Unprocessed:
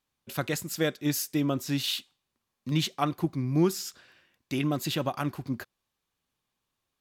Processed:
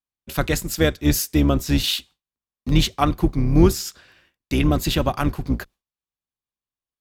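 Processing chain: octaver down 2 oct, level 0 dB; gate with hold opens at -53 dBFS; in parallel at -9.5 dB: crossover distortion -41 dBFS; on the sum: gain +5.5 dB

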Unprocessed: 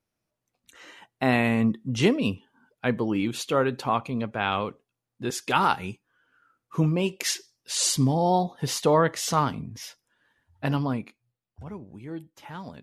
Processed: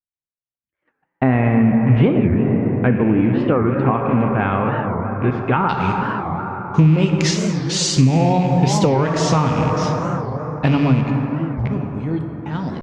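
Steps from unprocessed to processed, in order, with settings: rattling part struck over -35 dBFS, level -27 dBFS; LPF 2100 Hz 24 dB/oct, from 5.69 s 6700 Hz; gate -45 dBFS, range -40 dB; plate-style reverb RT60 5 s, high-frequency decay 0.3×, DRR 3.5 dB; compressor 6:1, threshold -24 dBFS, peak gain reduction 10 dB; low shelf 240 Hz +10.5 dB; record warp 45 rpm, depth 250 cents; gain +8 dB

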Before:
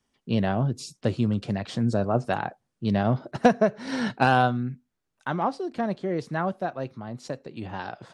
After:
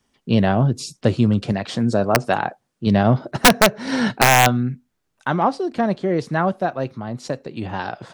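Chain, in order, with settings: wrapped overs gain 11 dB; 1.52–2.87 low shelf 120 Hz -10 dB; gain +7.5 dB

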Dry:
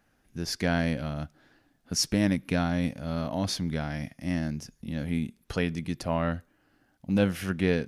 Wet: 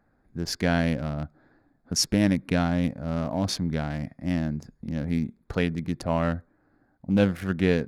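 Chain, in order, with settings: Wiener smoothing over 15 samples; gain +3 dB

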